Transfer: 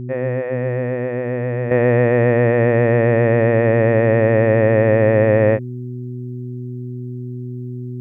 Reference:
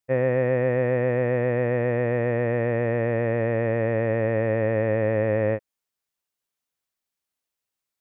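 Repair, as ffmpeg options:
-af "bandreject=f=123.9:t=h:w=4,bandreject=f=247.8:t=h:w=4,bandreject=f=371.7:t=h:w=4,asetnsamples=n=441:p=0,asendcmd='1.71 volume volume -9dB',volume=0dB"

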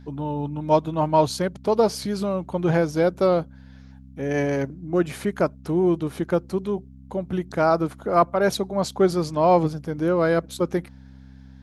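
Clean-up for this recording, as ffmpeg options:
-af "bandreject=f=65.8:t=h:w=4,bandreject=f=131.6:t=h:w=4,bandreject=f=197.4:t=h:w=4,bandreject=f=263.2:t=h:w=4"

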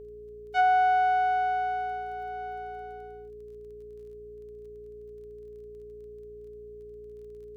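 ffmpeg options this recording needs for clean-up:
-af "adeclick=t=4,bandreject=f=58.1:t=h:w=4,bandreject=f=116.2:t=h:w=4,bandreject=f=174.3:t=h:w=4,bandreject=f=232.4:t=h:w=4,bandreject=f=290.5:t=h:w=4,bandreject=f=348.6:t=h:w=4,bandreject=f=420:w=30"

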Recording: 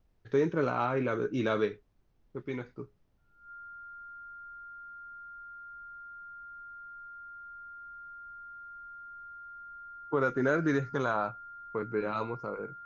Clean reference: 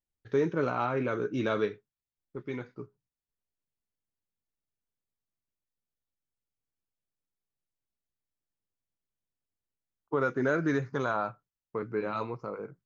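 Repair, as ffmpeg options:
-af "bandreject=f=1.4k:w=30,agate=range=-21dB:threshold=-55dB"

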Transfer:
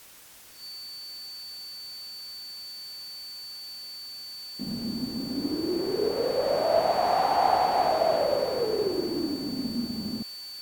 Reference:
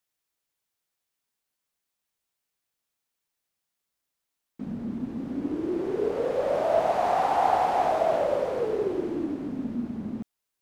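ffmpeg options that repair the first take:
-af "bandreject=f=4.5k:w=30,afftdn=nr=30:nf=-41"

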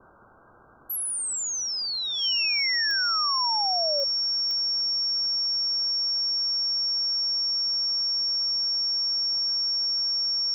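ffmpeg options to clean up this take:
-af "adeclick=t=4,bandreject=f=5.5k:w=30,afftdn=nr=30:nf=-29"

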